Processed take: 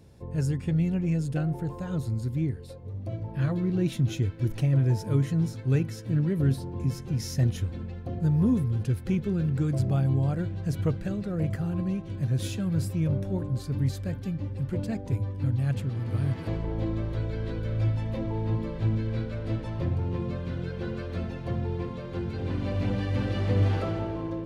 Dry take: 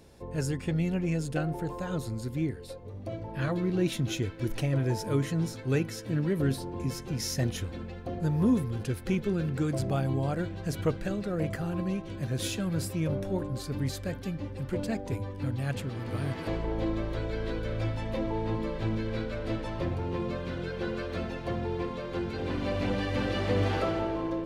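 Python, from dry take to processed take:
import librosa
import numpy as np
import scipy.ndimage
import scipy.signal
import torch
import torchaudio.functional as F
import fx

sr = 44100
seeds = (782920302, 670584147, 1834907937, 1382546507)

y = fx.peak_eq(x, sr, hz=110.0, db=11.5, octaves=2.0)
y = y * 10.0 ** (-4.5 / 20.0)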